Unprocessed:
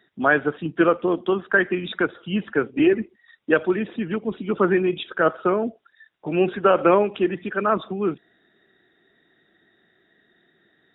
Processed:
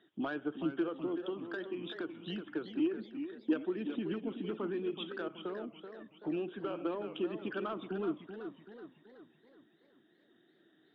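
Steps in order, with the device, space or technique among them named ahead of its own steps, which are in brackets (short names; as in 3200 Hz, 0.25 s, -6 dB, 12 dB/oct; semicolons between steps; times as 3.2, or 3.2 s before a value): AM radio (BPF 110–3300 Hz; compressor 5:1, threshold -29 dBFS, peak gain reduction 15.5 dB; soft clip -21.5 dBFS, distortion -21 dB; tremolo 0.26 Hz, depth 38%); thirty-one-band EQ 315 Hz +11 dB, 2000 Hz -8 dB, 3150 Hz +10 dB; warbling echo 0.378 s, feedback 48%, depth 144 cents, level -9 dB; gain -6.5 dB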